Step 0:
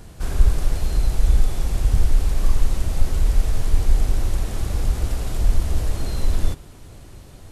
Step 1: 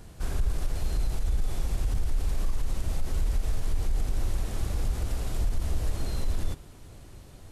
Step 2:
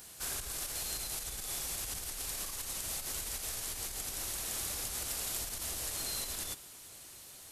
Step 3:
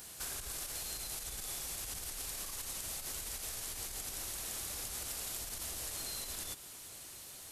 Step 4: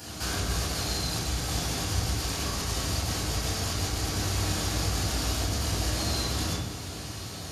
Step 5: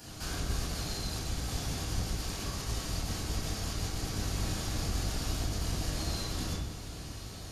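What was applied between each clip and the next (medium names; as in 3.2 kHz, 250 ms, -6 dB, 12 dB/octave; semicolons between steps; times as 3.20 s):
peak limiter -13 dBFS, peak gain reduction 9.5 dB; trim -5.5 dB
tilt EQ +4.5 dB/octave; trim -3 dB
compression 3:1, threshold -41 dBFS, peak gain reduction 6.5 dB; trim +1.5 dB
reverberation RT60 1.2 s, pre-delay 3 ms, DRR -6.5 dB
octave divider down 1 oct, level +2 dB; trim -7.5 dB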